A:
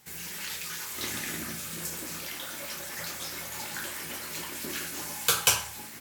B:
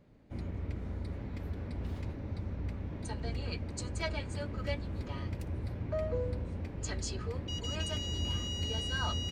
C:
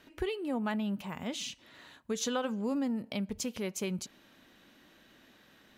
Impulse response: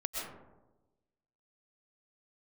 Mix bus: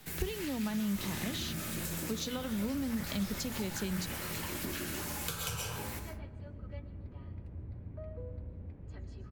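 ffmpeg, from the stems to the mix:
-filter_complex "[0:a]volume=-2.5dB,asplit=2[link_01][link_02];[link_02]volume=-4.5dB[link_03];[1:a]aemphasis=mode=reproduction:type=75fm,adelay=2050,volume=-16.5dB,asplit=2[link_04][link_05];[link_05]volume=-13dB[link_06];[2:a]equalizer=frequency=4100:width_type=o:width=0.77:gain=10,bandreject=frequency=60:width_type=h:width=6,bandreject=frequency=120:width_type=h:width=6,bandreject=frequency=180:width_type=h:width=6,bandreject=frequency=240:width_type=h:width=6,acrusher=bits=8:dc=4:mix=0:aa=0.000001,volume=0dB[link_07];[link_01][link_04]amix=inputs=2:normalize=0,equalizer=frequency=6500:width_type=o:width=0.84:gain=-8.5,acompressor=threshold=-41dB:ratio=6,volume=0dB[link_08];[3:a]atrim=start_sample=2205[link_09];[link_03][link_06]amix=inputs=2:normalize=0[link_10];[link_10][link_09]afir=irnorm=-1:irlink=0[link_11];[link_07][link_08][link_11]amix=inputs=3:normalize=0,lowshelf=frequency=280:gain=8,acrossover=split=170[link_12][link_13];[link_13]acompressor=threshold=-35dB:ratio=10[link_14];[link_12][link_14]amix=inputs=2:normalize=0"

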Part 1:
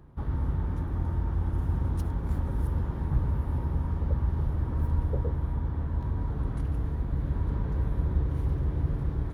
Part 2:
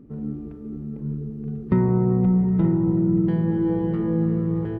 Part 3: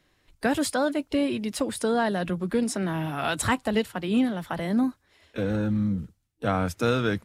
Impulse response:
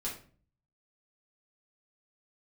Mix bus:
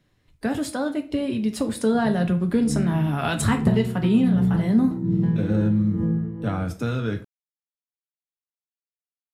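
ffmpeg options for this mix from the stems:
-filter_complex "[1:a]aeval=exprs='val(0)*pow(10,-24*(0.5-0.5*cos(2*PI*1.2*n/s))/20)':channel_layout=same,adelay=1950,volume=-5.5dB,asplit=3[link_01][link_02][link_03];[link_02]volume=-9dB[link_04];[link_03]volume=-7.5dB[link_05];[2:a]volume=-7.5dB,asplit=2[link_06][link_07];[link_07]volume=-4dB[link_08];[link_01][link_06]amix=inputs=2:normalize=0,equalizer=frequency=120:width_type=o:width=2.5:gain=14,acompressor=threshold=-23dB:ratio=6,volume=0dB[link_09];[3:a]atrim=start_sample=2205[link_10];[link_04][link_08]amix=inputs=2:normalize=0[link_11];[link_11][link_10]afir=irnorm=-1:irlink=0[link_12];[link_05]aecho=0:1:368:1[link_13];[link_09][link_12][link_13]amix=inputs=3:normalize=0,dynaudnorm=framelen=290:gausssize=11:maxgain=5dB"

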